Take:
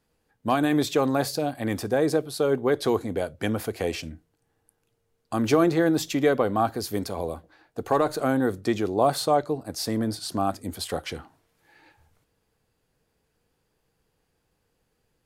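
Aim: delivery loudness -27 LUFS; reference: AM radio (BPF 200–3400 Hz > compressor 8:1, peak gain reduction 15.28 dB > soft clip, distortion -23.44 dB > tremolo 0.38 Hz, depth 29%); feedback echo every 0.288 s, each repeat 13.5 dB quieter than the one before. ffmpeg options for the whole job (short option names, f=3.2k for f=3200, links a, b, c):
-af "highpass=200,lowpass=3.4k,aecho=1:1:288|576:0.211|0.0444,acompressor=threshold=-31dB:ratio=8,asoftclip=threshold=-22.5dB,tremolo=f=0.38:d=0.29,volume=11.5dB"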